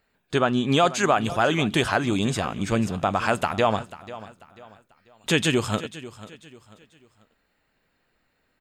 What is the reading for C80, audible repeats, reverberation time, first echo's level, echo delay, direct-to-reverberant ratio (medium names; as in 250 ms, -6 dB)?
no reverb, 3, no reverb, -16.5 dB, 491 ms, no reverb